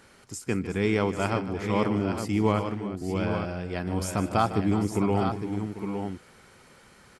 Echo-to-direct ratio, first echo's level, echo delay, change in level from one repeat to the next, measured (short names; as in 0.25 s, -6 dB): -5.5 dB, -14.0 dB, 0.152 s, no steady repeat